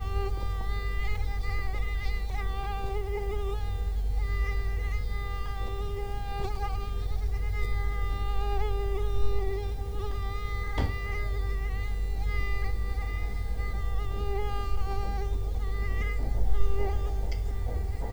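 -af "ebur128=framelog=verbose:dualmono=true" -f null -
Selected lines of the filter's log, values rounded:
Integrated loudness:
  I:         -30.0 LUFS
  Threshold: -40.0 LUFS
Loudness range:
  LRA:         1.2 LU
  Threshold: -50.1 LUFS
  LRA low:   -30.6 LUFS
  LRA high:  -29.4 LUFS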